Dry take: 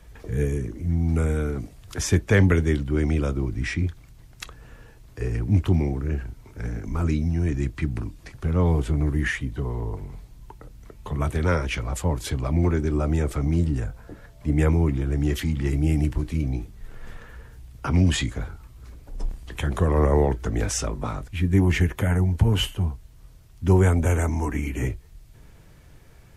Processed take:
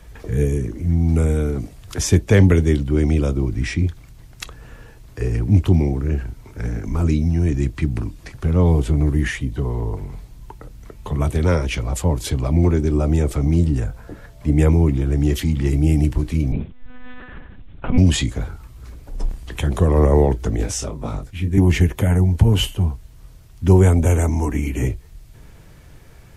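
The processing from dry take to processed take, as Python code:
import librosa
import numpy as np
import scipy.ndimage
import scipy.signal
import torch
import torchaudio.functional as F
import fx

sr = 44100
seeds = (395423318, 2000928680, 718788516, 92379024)

y = fx.dynamic_eq(x, sr, hz=1500.0, q=1.1, threshold_db=-44.0, ratio=4.0, max_db=-7)
y = fx.lpc_monotone(y, sr, seeds[0], pitch_hz=250.0, order=10, at=(16.52, 17.98))
y = fx.detune_double(y, sr, cents=59, at=(20.56, 21.58))
y = y * librosa.db_to_amplitude(5.5)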